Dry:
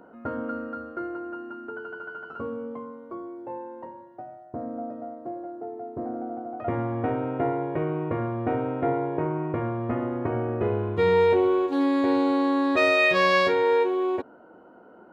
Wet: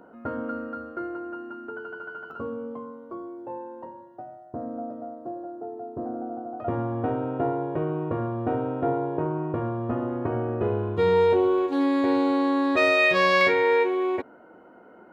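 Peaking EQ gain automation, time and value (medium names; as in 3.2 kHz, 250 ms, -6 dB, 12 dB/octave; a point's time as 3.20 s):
peaking EQ 2.1 kHz 0.33 oct
-0.5 dB
from 2.31 s -9 dB
from 4.81 s -15 dB
from 10.09 s -8 dB
from 11.58 s +1.5 dB
from 13.41 s +13 dB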